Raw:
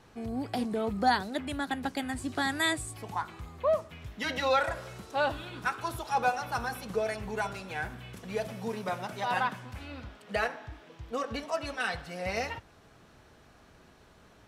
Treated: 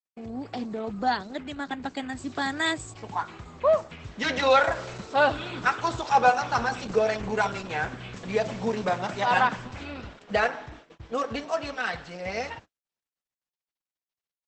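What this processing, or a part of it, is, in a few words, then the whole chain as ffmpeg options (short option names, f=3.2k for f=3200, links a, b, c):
video call: -af "highpass=f=110:p=1,dynaudnorm=f=220:g=31:m=8.5dB,agate=range=-46dB:threshold=-45dB:ratio=16:detection=peak" -ar 48000 -c:a libopus -b:a 12k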